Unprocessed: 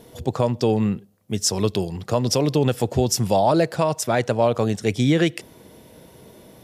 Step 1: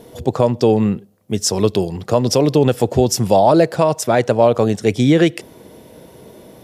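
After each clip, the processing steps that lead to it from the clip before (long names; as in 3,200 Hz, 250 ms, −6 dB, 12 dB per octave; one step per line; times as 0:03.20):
parametric band 450 Hz +4.5 dB 2.3 octaves
level +2.5 dB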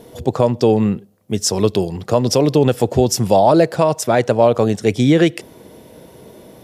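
no processing that can be heard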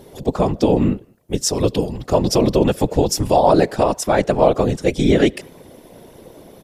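far-end echo of a speakerphone 210 ms, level −29 dB
random phases in short frames
level −1.5 dB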